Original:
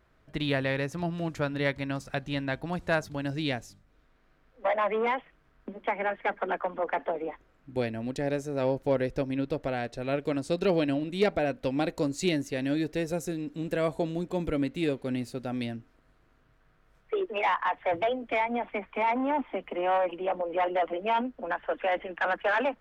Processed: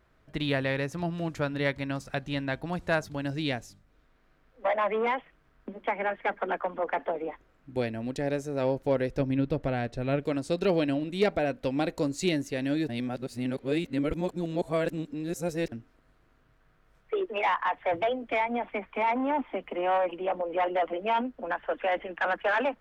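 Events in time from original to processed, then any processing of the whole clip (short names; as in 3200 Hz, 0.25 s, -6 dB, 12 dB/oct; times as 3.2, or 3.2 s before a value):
9.19–10.23 tone controls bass +7 dB, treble -4 dB
12.89–15.72 reverse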